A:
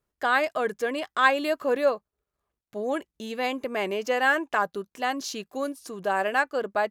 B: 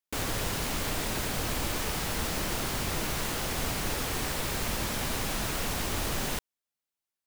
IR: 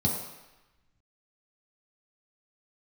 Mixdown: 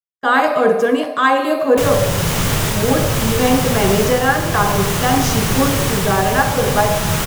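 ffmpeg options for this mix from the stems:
-filter_complex "[0:a]agate=range=-36dB:threshold=-40dB:ratio=16:detection=peak,highpass=200,volume=-2.5dB,asplit=2[link_01][link_02];[link_02]volume=-8dB[link_03];[1:a]adelay=1650,volume=1dB,asplit=2[link_04][link_05];[link_05]volume=-19.5dB[link_06];[2:a]atrim=start_sample=2205[link_07];[link_03][link_06]amix=inputs=2:normalize=0[link_08];[link_08][link_07]afir=irnorm=-1:irlink=0[link_09];[link_01][link_04][link_09]amix=inputs=3:normalize=0,dynaudnorm=framelen=140:gausssize=3:maxgain=13dB"

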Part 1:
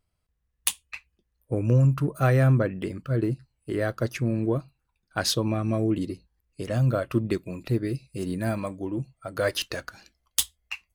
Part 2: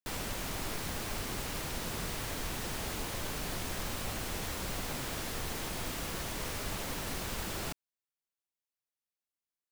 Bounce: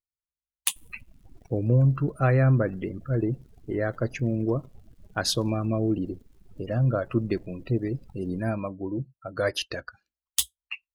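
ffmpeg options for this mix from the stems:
ffmpeg -i stem1.wav -i stem2.wav -filter_complex "[0:a]volume=-0.5dB[link_01];[1:a]acrusher=bits=6:dc=4:mix=0:aa=0.000001,adelay=700,volume=-6.5dB[link_02];[link_01][link_02]amix=inputs=2:normalize=0,afftdn=noise_reduction=28:noise_floor=-39" out.wav

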